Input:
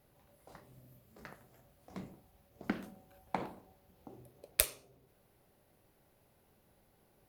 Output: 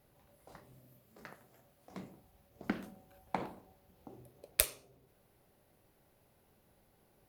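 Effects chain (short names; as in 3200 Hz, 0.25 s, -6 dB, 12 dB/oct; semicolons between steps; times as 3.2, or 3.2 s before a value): 0.77–2.15 low shelf 87 Hz -11 dB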